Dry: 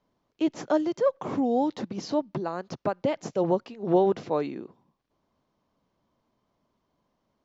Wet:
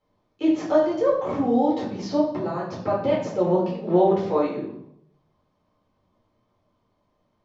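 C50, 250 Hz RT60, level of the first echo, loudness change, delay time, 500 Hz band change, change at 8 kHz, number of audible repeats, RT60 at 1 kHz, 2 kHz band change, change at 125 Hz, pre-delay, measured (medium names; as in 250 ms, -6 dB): 4.5 dB, 0.80 s, no echo, +4.5 dB, no echo, +4.5 dB, no reading, no echo, 0.65 s, +3.0 dB, +5.0 dB, 4 ms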